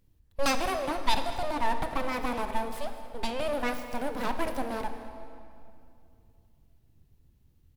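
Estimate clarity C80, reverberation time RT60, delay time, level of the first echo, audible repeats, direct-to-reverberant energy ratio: 9.0 dB, 2.6 s, 216 ms, -19.0 dB, 1, 7.0 dB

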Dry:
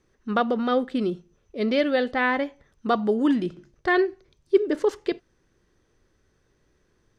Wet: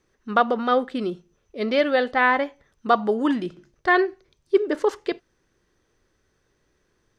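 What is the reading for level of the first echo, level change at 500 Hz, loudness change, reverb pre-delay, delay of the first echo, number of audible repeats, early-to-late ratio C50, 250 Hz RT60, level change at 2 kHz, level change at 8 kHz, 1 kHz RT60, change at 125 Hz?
no echo, +1.0 dB, +2.0 dB, no reverb, no echo, no echo, no reverb, no reverb, +4.0 dB, no reading, no reverb, -2.5 dB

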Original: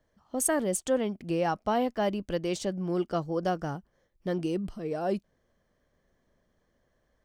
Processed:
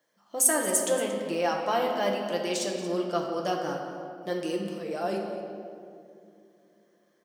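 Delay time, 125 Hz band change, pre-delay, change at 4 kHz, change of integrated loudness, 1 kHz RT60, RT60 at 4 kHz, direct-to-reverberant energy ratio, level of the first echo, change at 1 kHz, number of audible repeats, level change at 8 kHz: 229 ms, -6.0 dB, 6 ms, +6.0 dB, +2.0 dB, 2.2 s, 1.3 s, 0.0 dB, -13.5 dB, +2.5 dB, 1, +8.0 dB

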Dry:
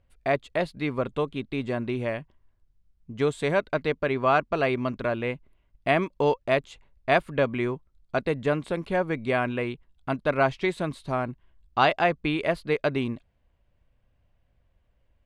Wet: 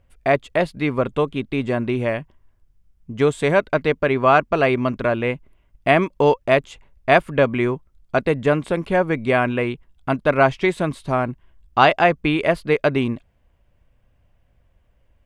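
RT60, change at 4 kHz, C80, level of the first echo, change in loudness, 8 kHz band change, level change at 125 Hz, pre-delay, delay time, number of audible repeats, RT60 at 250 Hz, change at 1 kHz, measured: no reverb, +5.5 dB, no reverb, no echo, +7.0 dB, no reading, +7.0 dB, no reverb, no echo, no echo, no reverb, +7.0 dB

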